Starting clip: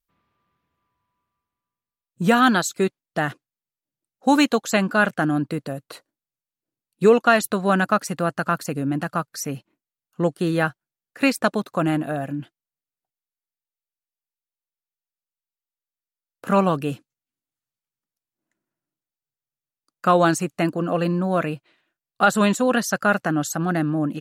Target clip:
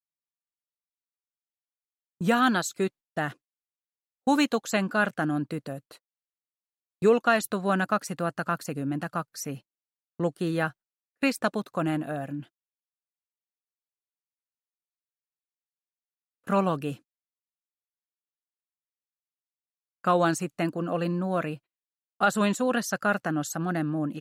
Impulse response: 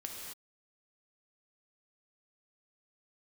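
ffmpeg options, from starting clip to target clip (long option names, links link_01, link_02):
-af "agate=range=-36dB:threshold=-38dB:ratio=16:detection=peak,volume=-6dB"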